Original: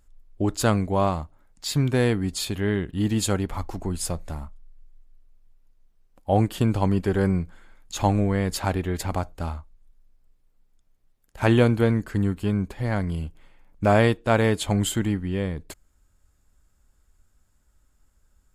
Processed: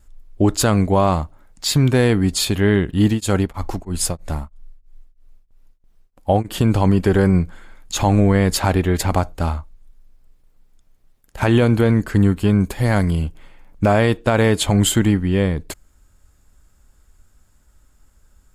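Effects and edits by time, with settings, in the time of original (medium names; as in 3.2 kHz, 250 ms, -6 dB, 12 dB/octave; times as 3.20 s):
3.05–6.66 s: tremolo of two beating tones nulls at 3.1 Hz
12.60–13.11 s: treble shelf 6.3 kHz +11.5 dB
whole clip: gate with hold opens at -57 dBFS; loudness maximiser +14 dB; trim -5 dB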